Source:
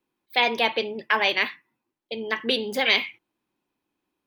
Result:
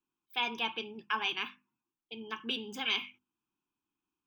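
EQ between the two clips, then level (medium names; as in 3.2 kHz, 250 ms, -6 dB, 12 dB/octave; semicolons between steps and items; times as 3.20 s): hum notches 50/100/150/200/250 Hz; static phaser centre 2.9 kHz, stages 8; -7.5 dB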